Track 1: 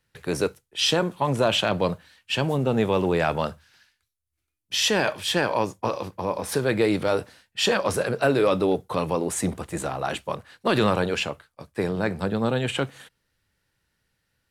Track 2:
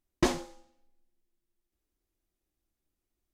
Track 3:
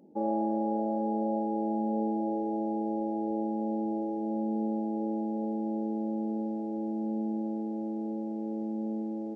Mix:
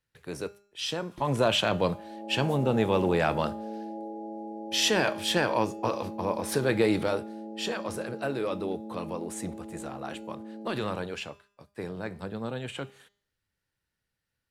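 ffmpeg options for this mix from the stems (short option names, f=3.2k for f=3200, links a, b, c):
-filter_complex "[0:a]bandreject=f=202.2:t=h:w=4,bandreject=f=404.4:t=h:w=4,bandreject=f=606.6:t=h:w=4,bandreject=f=808.8:t=h:w=4,bandreject=f=1.011k:t=h:w=4,bandreject=f=1.2132k:t=h:w=4,bandreject=f=1.4154k:t=h:w=4,bandreject=f=1.6176k:t=h:w=4,bandreject=f=1.8198k:t=h:w=4,bandreject=f=2.022k:t=h:w=4,bandreject=f=2.2242k:t=h:w=4,bandreject=f=2.4264k:t=h:w=4,bandreject=f=2.6286k:t=h:w=4,bandreject=f=2.8308k:t=h:w=4,bandreject=f=3.033k:t=h:w=4,bandreject=f=3.2352k:t=h:w=4,bandreject=f=3.4374k:t=h:w=4,bandreject=f=3.6396k:t=h:w=4,bandreject=f=3.8418k:t=h:w=4,bandreject=f=4.044k:t=h:w=4,bandreject=f=4.2462k:t=h:w=4,bandreject=f=4.4484k:t=h:w=4,bandreject=f=4.6506k:t=h:w=4,bandreject=f=4.8528k:t=h:w=4,bandreject=f=5.055k:t=h:w=4,bandreject=f=5.2572k:t=h:w=4,bandreject=f=5.4594k:t=h:w=4,bandreject=f=5.6616k:t=h:w=4,bandreject=f=5.8638k:t=h:w=4,bandreject=f=6.066k:t=h:w=4,bandreject=f=6.2682k:t=h:w=4,bandreject=f=6.4704k:t=h:w=4,bandreject=f=6.6726k:t=h:w=4,bandreject=f=6.8748k:t=h:w=4,bandreject=f=7.077k:t=h:w=4,bandreject=f=7.2792k:t=h:w=4,bandreject=f=7.4814k:t=h:w=4,bandreject=f=7.6836k:t=h:w=4,volume=-2.5dB,afade=t=in:st=1.08:d=0.26:silence=0.398107,afade=t=out:st=7.03:d=0.21:silence=0.398107,asplit=2[a][b];[1:a]acrossover=split=290[c][d];[d]acompressor=threshold=-36dB:ratio=6[e];[c][e]amix=inputs=2:normalize=0,adelay=950,volume=-7.5dB[f];[2:a]equalizer=f=60:w=0.49:g=-15,dynaudnorm=f=340:g=3:m=12dB,adelay=1700,volume=-17dB[g];[b]apad=whole_len=188867[h];[f][h]sidechaincompress=threshold=-44dB:ratio=3:attack=5.7:release=414[i];[a][i][g]amix=inputs=3:normalize=0"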